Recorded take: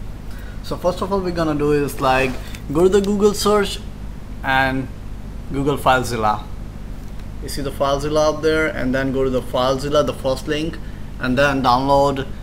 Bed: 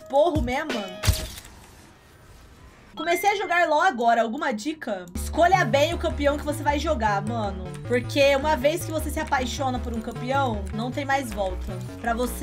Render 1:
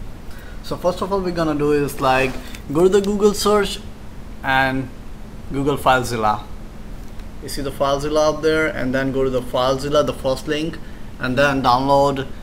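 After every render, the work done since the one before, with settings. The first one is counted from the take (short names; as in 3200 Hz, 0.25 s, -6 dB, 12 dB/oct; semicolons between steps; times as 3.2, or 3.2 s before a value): de-hum 50 Hz, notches 5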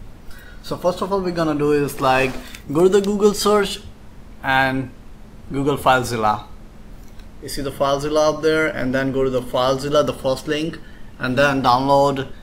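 noise print and reduce 6 dB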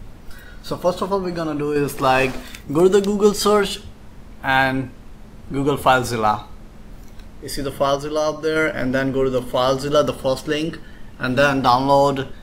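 1.17–1.76 compressor 3:1, threshold -20 dBFS; 7.96–8.56 gain -4 dB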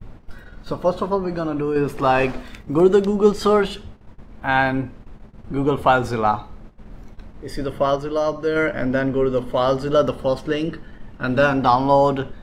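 LPF 1900 Hz 6 dB/oct; gate -38 dBFS, range -31 dB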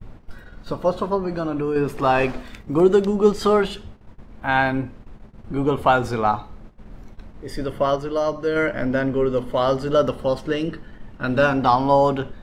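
gain -1 dB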